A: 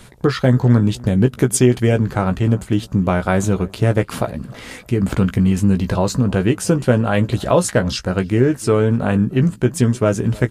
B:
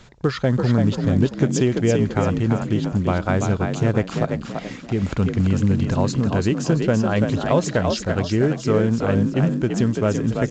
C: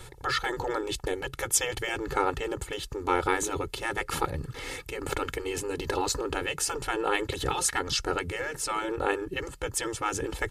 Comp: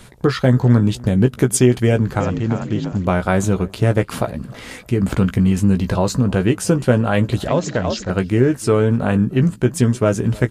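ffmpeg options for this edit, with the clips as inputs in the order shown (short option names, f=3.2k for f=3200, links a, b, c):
-filter_complex "[1:a]asplit=2[a][b];[0:a]asplit=3[c][d][e];[c]atrim=end=2.202[f];[a]atrim=start=2.198:end=3.052[g];[d]atrim=start=3.048:end=7.482[h];[b]atrim=start=7.478:end=8.102[i];[e]atrim=start=8.098[j];[f][g]acrossfade=d=0.004:c1=hsin:c2=hsin[k];[k][h]acrossfade=d=0.004:c1=hsin:c2=hsin[l];[l][i]acrossfade=d=0.004:c1=hsin:c2=hsin[m];[m][j]acrossfade=d=0.004:c1=hsin:c2=hsin"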